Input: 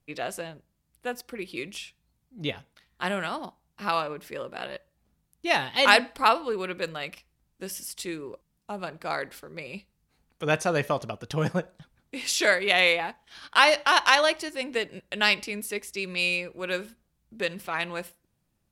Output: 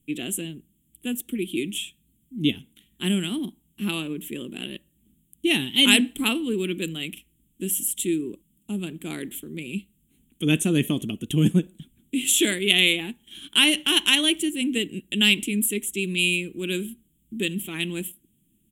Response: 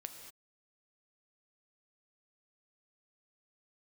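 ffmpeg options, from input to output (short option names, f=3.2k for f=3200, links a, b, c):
-af "firequalizer=gain_entry='entry(110,0);entry(220,11);entry(320,10);entry(540,-16);entry(830,-18);entry(1300,-17);entry(3200,9);entry(4700,-22);entry(7300,9);entry(15000,12)':delay=0.05:min_phase=1,volume=3dB"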